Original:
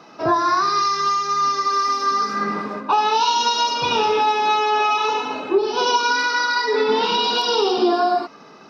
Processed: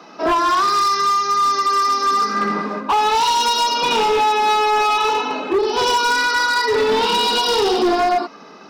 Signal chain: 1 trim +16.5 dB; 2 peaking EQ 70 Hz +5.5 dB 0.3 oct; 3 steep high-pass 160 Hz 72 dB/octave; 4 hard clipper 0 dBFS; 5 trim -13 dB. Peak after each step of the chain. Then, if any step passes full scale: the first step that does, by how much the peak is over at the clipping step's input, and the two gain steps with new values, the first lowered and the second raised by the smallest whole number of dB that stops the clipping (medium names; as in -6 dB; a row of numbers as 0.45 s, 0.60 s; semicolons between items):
+8.5 dBFS, +8.5 dBFS, +9.5 dBFS, 0.0 dBFS, -13.0 dBFS; step 1, 9.5 dB; step 1 +6.5 dB, step 5 -3 dB